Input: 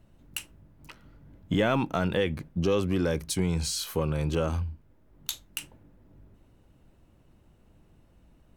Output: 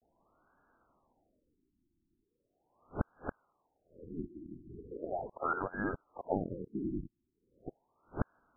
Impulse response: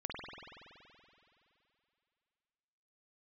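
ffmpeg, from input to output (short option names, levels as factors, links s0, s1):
-af "areverse,tiltshelf=f=700:g=-6,bandreject=f=79.99:t=h:w=4,bandreject=f=159.98:t=h:w=4,bandreject=f=239.97:t=h:w=4,bandreject=f=319.96:t=h:w=4,bandreject=f=399.95:t=h:w=4,bandreject=f=479.94:t=h:w=4,bandreject=f=559.93:t=h:w=4,bandreject=f=639.92:t=h:w=4,bandreject=f=719.91:t=h:w=4,bandreject=f=799.9:t=h:w=4,bandreject=f=879.89:t=h:w=4,bandreject=f=959.88:t=h:w=4,bandreject=f=1039.87:t=h:w=4,lowpass=f=2500:t=q:w=0.5098,lowpass=f=2500:t=q:w=0.6013,lowpass=f=2500:t=q:w=0.9,lowpass=f=2500:t=q:w=2.563,afreqshift=-2900,equalizer=f=1700:w=0.41:g=-5,afftfilt=real='re*lt(b*sr/1024,350*pow(1700/350,0.5+0.5*sin(2*PI*0.39*pts/sr)))':imag='im*lt(b*sr/1024,350*pow(1700/350,0.5+0.5*sin(2*PI*0.39*pts/sr)))':win_size=1024:overlap=0.75,volume=2.66"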